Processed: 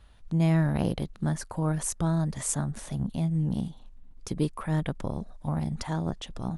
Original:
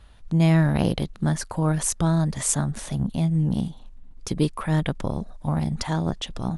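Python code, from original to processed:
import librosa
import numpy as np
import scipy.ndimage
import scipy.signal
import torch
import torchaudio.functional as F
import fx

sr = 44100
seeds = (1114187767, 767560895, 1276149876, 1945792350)

y = fx.dynamic_eq(x, sr, hz=3700.0, q=0.7, threshold_db=-42.0, ratio=4.0, max_db=-4)
y = F.gain(torch.from_numpy(y), -5.0).numpy()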